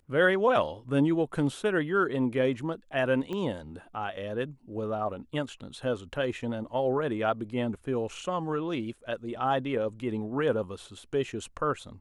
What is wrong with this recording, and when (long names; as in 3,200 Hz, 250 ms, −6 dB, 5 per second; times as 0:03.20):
0:03.33: click −23 dBFS